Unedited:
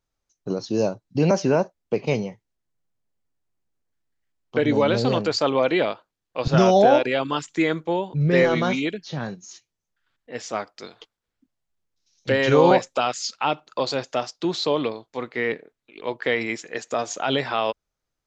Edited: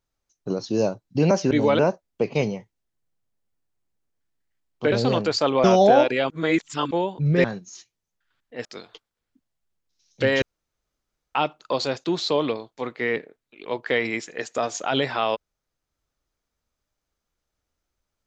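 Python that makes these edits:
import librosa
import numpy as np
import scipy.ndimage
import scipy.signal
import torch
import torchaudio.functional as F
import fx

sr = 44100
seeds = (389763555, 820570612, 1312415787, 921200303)

y = fx.edit(x, sr, fx.move(start_s=4.64, length_s=0.28, to_s=1.51),
    fx.cut(start_s=5.64, length_s=0.95),
    fx.reverse_span(start_s=7.25, length_s=0.61),
    fx.cut(start_s=8.39, length_s=0.81),
    fx.cut(start_s=10.41, length_s=0.31),
    fx.room_tone_fill(start_s=12.49, length_s=0.93),
    fx.cut(start_s=14.11, length_s=0.29), tone=tone)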